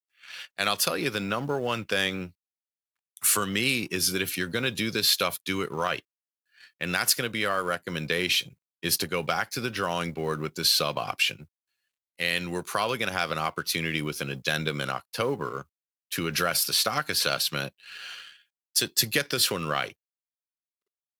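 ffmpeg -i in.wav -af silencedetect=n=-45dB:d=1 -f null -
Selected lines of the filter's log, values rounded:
silence_start: 19.92
silence_end: 21.20 | silence_duration: 1.27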